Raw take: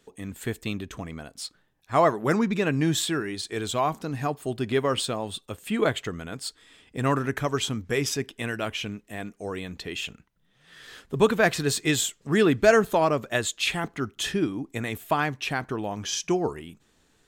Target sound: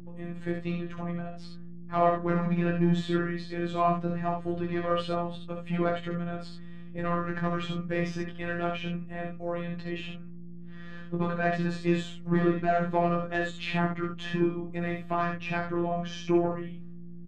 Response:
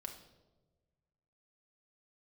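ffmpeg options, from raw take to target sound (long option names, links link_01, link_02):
-filter_complex "[0:a]agate=range=-33dB:threshold=-52dB:ratio=3:detection=peak,lowpass=2100,lowshelf=frequency=140:gain=7,alimiter=limit=-14dB:level=0:latency=1:release=280,asoftclip=type=tanh:threshold=-16.5dB,flanger=delay=17.5:depth=2.3:speed=0.2,aeval=exprs='val(0)+0.00891*(sin(2*PI*60*n/s)+sin(2*PI*2*60*n/s)/2+sin(2*PI*3*60*n/s)/3+sin(2*PI*4*60*n/s)/4+sin(2*PI*5*60*n/s)/5)':channel_layout=same,afftfilt=real='hypot(re,im)*cos(PI*b)':imag='0':win_size=1024:overlap=0.75,asplit=2[link_01][link_02];[link_02]aecho=0:1:20|35|58|68:0.251|0.2|0.224|0.562[link_03];[link_01][link_03]amix=inputs=2:normalize=0,volume=4.5dB"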